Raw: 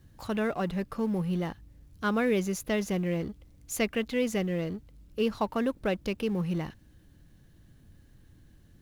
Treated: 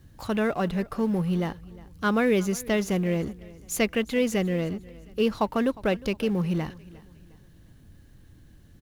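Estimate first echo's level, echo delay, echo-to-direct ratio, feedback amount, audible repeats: −21.0 dB, 357 ms, −20.5 dB, 38%, 2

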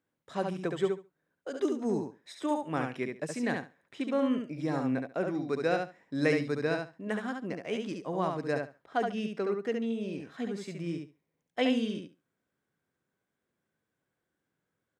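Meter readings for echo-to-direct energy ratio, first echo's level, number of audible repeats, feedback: −4.5 dB, −4.5 dB, 2, 16%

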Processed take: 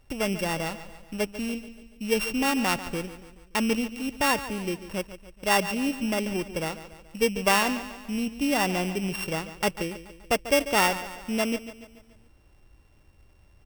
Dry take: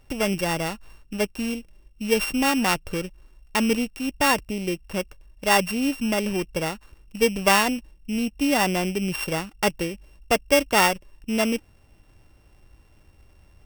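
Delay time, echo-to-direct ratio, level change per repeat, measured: 143 ms, −12.0 dB, −6.0 dB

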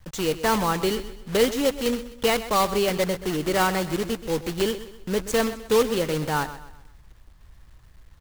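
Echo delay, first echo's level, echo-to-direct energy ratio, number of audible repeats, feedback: 128 ms, −14.0 dB, −13.5 dB, 3, 38%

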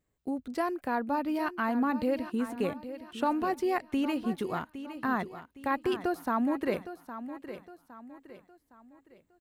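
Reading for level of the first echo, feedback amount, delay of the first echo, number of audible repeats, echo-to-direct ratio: −12.0 dB, 39%, 812 ms, 3, −11.5 dB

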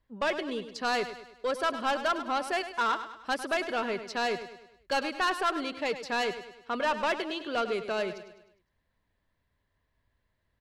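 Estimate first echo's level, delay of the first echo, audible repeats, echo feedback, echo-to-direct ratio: −11.5 dB, 102 ms, 4, 47%, −10.5 dB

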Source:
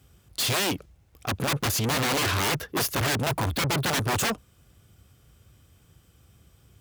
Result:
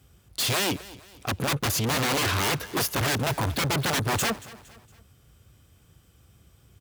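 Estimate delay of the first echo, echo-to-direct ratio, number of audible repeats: 231 ms, −18.0 dB, 3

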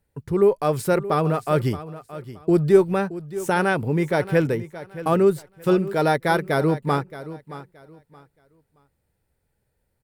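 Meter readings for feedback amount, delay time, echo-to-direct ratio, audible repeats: 24%, 623 ms, −14.5 dB, 2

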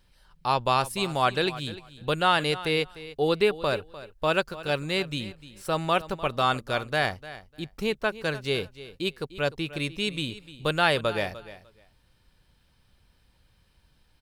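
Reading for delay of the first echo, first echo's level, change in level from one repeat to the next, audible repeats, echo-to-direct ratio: 300 ms, −16.0 dB, −15.5 dB, 2, −16.0 dB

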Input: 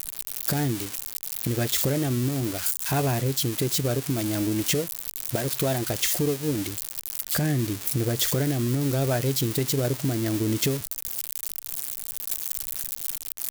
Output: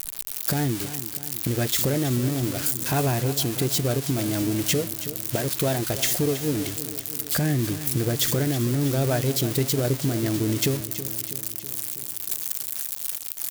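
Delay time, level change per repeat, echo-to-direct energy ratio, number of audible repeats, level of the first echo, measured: 324 ms, −4.5 dB, −11.0 dB, 5, −13.0 dB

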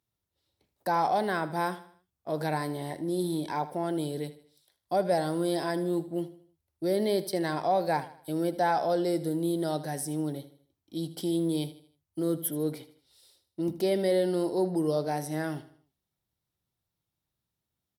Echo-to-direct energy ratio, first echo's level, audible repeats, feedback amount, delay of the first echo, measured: −14.0 dB, −15.0 dB, 3, 41%, 78 ms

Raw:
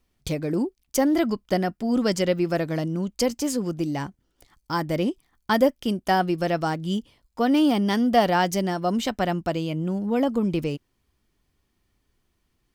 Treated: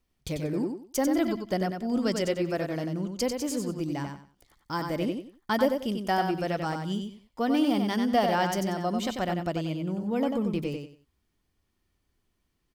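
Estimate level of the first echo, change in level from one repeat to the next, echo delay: −5.5 dB, −12.0 dB, 93 ms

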